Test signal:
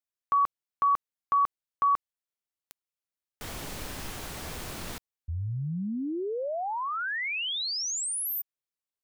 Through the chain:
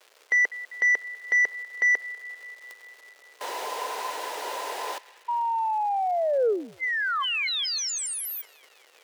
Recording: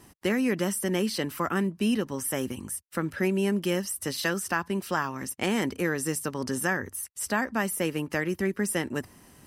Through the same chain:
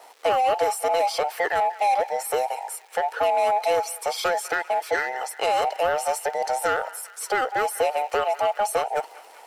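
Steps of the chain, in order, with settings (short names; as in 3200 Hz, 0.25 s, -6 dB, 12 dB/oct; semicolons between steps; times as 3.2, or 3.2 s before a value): band inversion scrambler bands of 1000 Hz; crackle 500/s -45 dBFS; resonant high-pass 450 Hz, resonance Q 3.4; on a send: narrowing echo 0.197 s, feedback 72%, band-pass 2200 Hz, level -18.5 dB; on the sum: overdrive pedal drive 11 dB, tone 5300 Hz, clips at -11.5 dBFS; gain -1.5 dB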